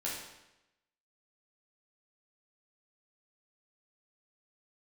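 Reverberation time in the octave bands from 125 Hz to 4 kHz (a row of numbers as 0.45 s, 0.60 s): 0.95 s, 0.95 s, 0.95 s, 0.90 s, 0.90 s, 0.85 s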